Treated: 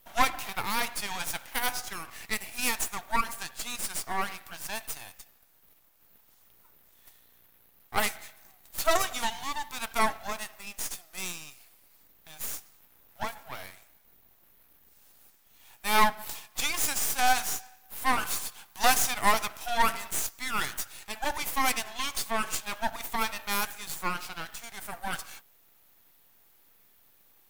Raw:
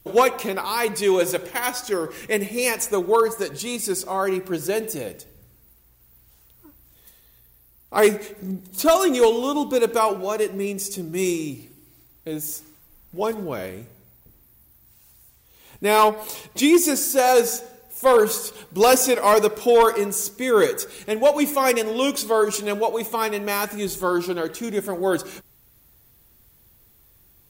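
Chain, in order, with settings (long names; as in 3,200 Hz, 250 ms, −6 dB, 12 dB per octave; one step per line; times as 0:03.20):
elliptic high-pass filter 700 Hz, stop band 40 dB
half-wave rectification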